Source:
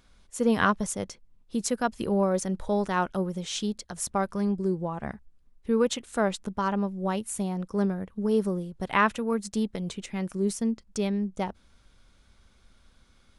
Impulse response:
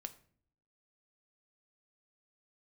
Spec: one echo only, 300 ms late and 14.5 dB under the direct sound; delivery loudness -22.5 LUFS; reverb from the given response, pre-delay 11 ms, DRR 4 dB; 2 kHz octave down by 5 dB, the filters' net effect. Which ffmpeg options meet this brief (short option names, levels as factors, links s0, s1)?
-filter_complex "[0:a]equalizer=f=2000:t=o:g=-7,aecho=1:1:300:0.188,asplit=2[s0][s1];[1:a]atrim=start_sample=2205,adelay=11[s2];[s1][s2]afir=irnorm=-1:irlink=0,volume=1[s3];[s0][s3]amix=inputs=2:normalize=0,volume=1.68"